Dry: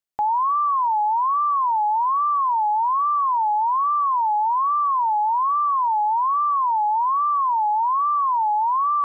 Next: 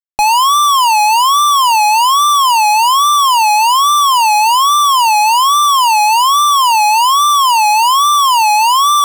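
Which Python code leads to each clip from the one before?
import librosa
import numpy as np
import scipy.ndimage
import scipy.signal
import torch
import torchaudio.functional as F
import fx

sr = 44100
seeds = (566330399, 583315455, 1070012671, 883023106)

y = fx.fuzz(x, sr, gain_db=47.0, gate_db=-47.0)
y = y * 10.0 ** (4.0 / 20.0)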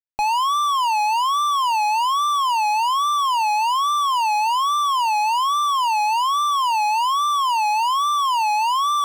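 y = fx.high_shelf(x, sr, hz=5500.0, db=-11.5)
y = y * 10.0 ** (-9.0 / 20.0)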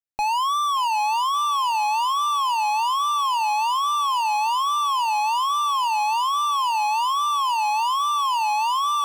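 y = fx.echo_feedback(x, sr, ms=577, feedback_pct=45, wet_db=-16.5)
y = y * 10.0 ** (-2.5 / 20.0)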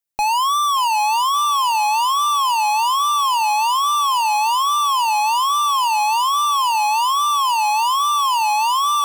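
y = fx.high_shelf(x, sr, hz=6400.0, db=8.5)
y = y * 10.0 ** (4.0 / 20.0)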